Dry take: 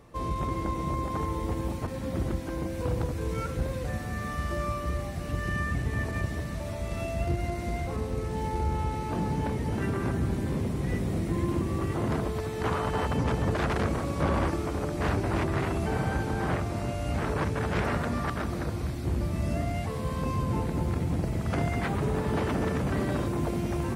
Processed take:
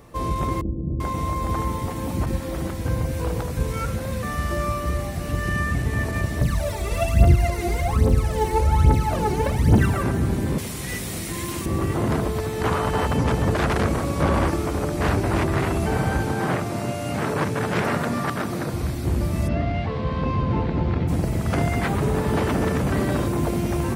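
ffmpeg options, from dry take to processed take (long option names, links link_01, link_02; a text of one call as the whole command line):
ffmpeg -i in.wav -filter_complex "[0:a]asettb=1/sr,asplit=3[link_01][link_02][link_03];[link_01]atrim=end=0.614[link_04];[link_02]atrim=start=0.61:end=4.23,asetpts=PTS-STARTPTS,afade=type=in:duration=0.004:curve=qsin,afade=type=out:start_time=3.616:duration=0.004:curve=qsin,acrossover=split=400[link_05][link_06];[link_06]adelay=390[link_07];[link_05][link_07]amix=inputs=2:normalize=0,atrim=end_sample=159642[link_08];[link_03]atrim=start=4.226[link_09];[link_04][link_08]acrossfade=duration=0.004:curve1=hsin:curve2=qsin[link_10];[link_10][link_09]acrossfade=duration=0.004:curve1=qsin:curve2=hsin,asettb=1/sr,asplit=3[link_11][link_12][link_13];[link_11]atrim=end=6.414[link_14];[link_12]atrim=start=6.41:end=10.03,asetpts=PTS-STARTPTS,afade=type=in:duration=0.004:curve=qsin,afade=type=out:start_time=3.616:duration=0.004:curve=qsin,aphaser=in_gain=1:out_gain=1:delay=2.8:decay=0.73:speed=1.2:type=triangular[link_15];[link_13]atrim=start=10.026[link_16];[link_14][link_15]acrossfade=duration=0.004:curve1=hsin:curve2=qsin[link_17];[link_17][link_16]acrossfade=duration=0.004:curve1=qsin:curve2=hsin,asettb=1/sr,asplit=3[link_18][link_19][link_20];[link_18]atrim=end=10.584[link_21];[link_19]atrim=start=10.58:end=11.66,asetpts=PTS-STARTPTS,afade=type=in:duration=0.004:curve=qsin,afade=type=out:start_time=1.076:duration=0.004:curve=qsin,tiltshelf=frequency=1400:gain=-9.5[link_22];[link_20]atrim=start=11.656[link_23];[link_21][link_22]acrossfade=duration=0.004:curve1=hsin:curve2=qsin[link_24];[link_24][link_23]acrossfade=duration=0.004:curve1=qsin:curve2=hsin,asettb=1/sr,asplit=3[link_25][link_26][link_27];[link_25]atrim=end=16.324[link_28];[link_26]atrim=start=16.32:end=18.74,asetpts=PTS-STARTPTS,afade=type=in:duration=0.004:curve=qsin,afade=type=out:start_time=2.416:duration=0.004:curve=qsin,highpass=frequency=110:width=0.5412,highpass=frequency=110:width=1.3066[link_29];[link_27]atrim=start=18.736[link_30];[link_28][link_29]acrossfade=duration=0.004:curve1=hsin:curve2=qsin[link_31];[link_31][link_30]acrossfade=duration=0.004:curve1=qsin:curve2=hsin,asplit=3[link_32][link_33][link_34];[link_32]afade=type=out:start_time=19.47:duration=0.02[link_35];[link_33]lowpass=frequency=4100:width=0.5412,lowpass=frequency=4100:width=1.3066,afade=type=in:start_time=19.47:duration=0.02,afade=type=out:start_time=21.07:duration=0.02[link_36];[link_34]afade=type=in:start_time=21.07:duration=0.02[link_37];[link_35][link_36][link_37]amix=inputs=3:normalize=0,highshelf=frequency=10000:gain=8,volume=6dB" out.wav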